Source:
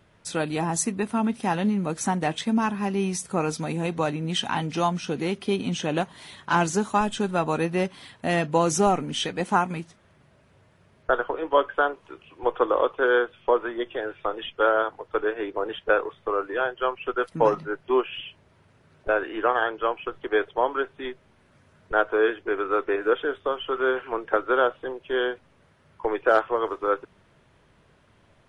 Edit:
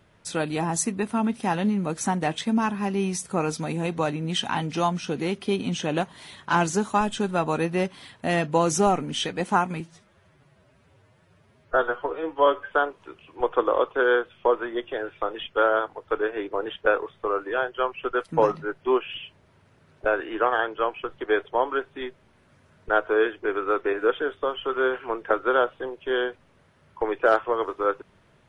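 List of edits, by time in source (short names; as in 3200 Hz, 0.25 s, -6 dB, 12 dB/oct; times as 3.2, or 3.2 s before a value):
9.8–11.74 stretch 1.5×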